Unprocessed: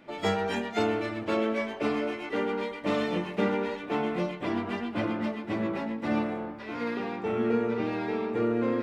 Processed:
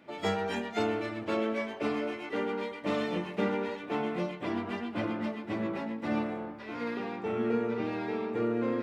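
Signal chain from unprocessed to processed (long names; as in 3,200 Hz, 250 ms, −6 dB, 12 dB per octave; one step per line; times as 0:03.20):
high-pass filter 59 Hz
level −3 dB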